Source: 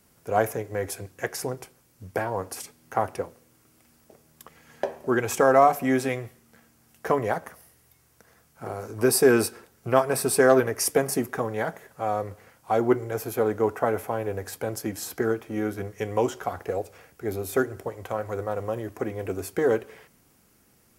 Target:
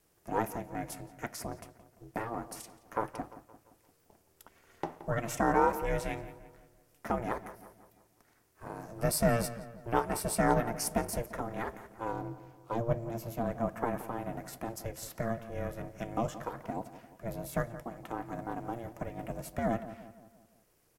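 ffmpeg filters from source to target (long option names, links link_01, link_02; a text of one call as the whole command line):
ffmpeg -i in.wav -filter_complex "[0:a]asettb=1/sr,asplit=3[link_01][link_02][link_03];[link_01]atrim=end=12.124[link_04];[link_02]atrim=start=12.12:end=13.44,asetpts=PTS-STARTPTS,afade=type=in:duration=0.004:curve=qsin,afade=type=out:start_time=1.316:duration=0.004:curve=qsin,equalizer=frequency=100:width_type=o:width=0.67:gain=8,equalizer=frequency=630:width_type=o:width=0.67:gain=-4,equalizer=frequency=1600:width_type=o:width=0.67:gain=-9,equalizer=frequency=10000:width_type=o:width=0.67:gain=-6[link_05];[link_03]atrim=start=13.436[link_06];[link_04][link_05]acrossfade=duration=0.004:curve1=hsin:curve2=qsin[link_07];[link_07][link_06]acrossfade=duration=0.004:curve1=qsin:curve2=hsin,aeval=exprs='val(0)*sin(2*PI*230*n/s)':channel_layout=same,asplit=2[link_08][link_09];[link_09]adelay=173,lowpass=frequency=2500:poles=1,volume=-13.5dB,asplit=2[link_10][link_11];[link_11]adelay=173,lowpass=frequency=2500:poles=1,volume=0.5,asplit=2[link_12][link_13];[link_13]adelay=173,lowpass=frequency=2500:poles=1,volume=0.5,asplit=2[link_14][link_15];[link_15]adelay=173,lowpass=frequency=2500:poles=1,volume=0.5,asplit=2[link_16][link_17];[link_17]adelay=173,lowpass=frequency=2500:poles=1,volume=0.5[link_18];[link_08][link_10][link_12][link_14][link_16][link_18]amix=inputs=6:normalize=0,volume=-6dB" out.wav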